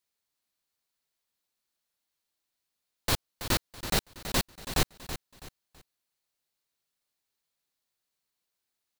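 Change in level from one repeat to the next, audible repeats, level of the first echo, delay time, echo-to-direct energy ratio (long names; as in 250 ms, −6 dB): −10.0 dB, 3, −11.0 dB, 328 ms, −10.5 dB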